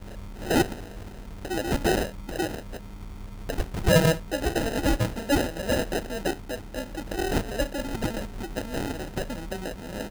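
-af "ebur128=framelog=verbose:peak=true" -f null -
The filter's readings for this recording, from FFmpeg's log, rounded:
Integrated loudness:
  I:         -28.1 LUFS
  Threshold: -38.6 LUFS
Loudness range:
  LRA:         5.8 LU
  Threshold: -48.1 LUFS
  LRA low:   -31.6 LUFS
  LRA high:  -25.8 LUFS
True peak:
  Peak:       -7.6 dBFS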